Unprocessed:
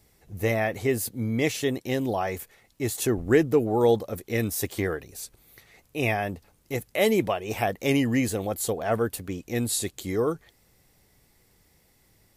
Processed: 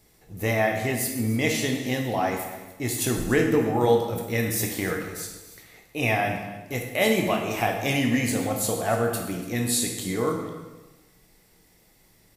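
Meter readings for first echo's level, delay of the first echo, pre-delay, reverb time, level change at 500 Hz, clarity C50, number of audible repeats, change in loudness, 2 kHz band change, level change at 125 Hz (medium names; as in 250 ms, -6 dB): -17.0 dB, 288 ms, 13 ms, 1.1 s, -0.5 dB, 4.5 dB, 1, +1.0 dB, +4.0 dB, +1.5 dB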